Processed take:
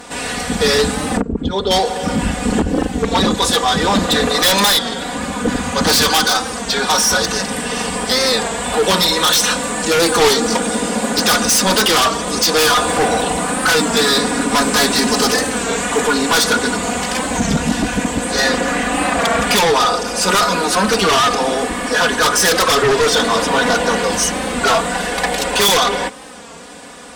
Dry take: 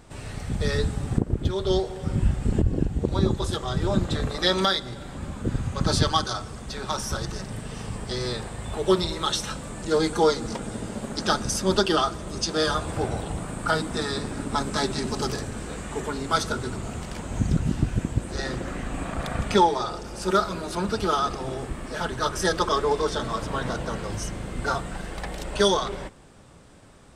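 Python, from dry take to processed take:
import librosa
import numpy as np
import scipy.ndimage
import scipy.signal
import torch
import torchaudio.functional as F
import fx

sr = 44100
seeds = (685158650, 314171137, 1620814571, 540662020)

p1 = fx.envelope_sharpen(x, sr, power=1.5, at=(1.21, 1.7), fade=0.02)
p2 = fx.highpass(p1, sr, hz=550.0, slope=6)
p3 = fx.notch(p2, sr, hz=1300.0, q=15.0)
p4 = p3 + 0.89 * np.pad(p3, (int(4.1 * sr / 1000.0), 0))[:len(p3)]
p5 = fx.fold_sine(p4, sr, drive_db=15, ceiling_db=-10.0)
p6 = p4 + F.gain(torch.from_numpy(p5), -8.0).numpy()
p7 = fx.record_warp(p6, sr, rpm=33.33, depth_cents=100.0)
y = F.gain(torch.from_numpy(p7), 5.0).numpy()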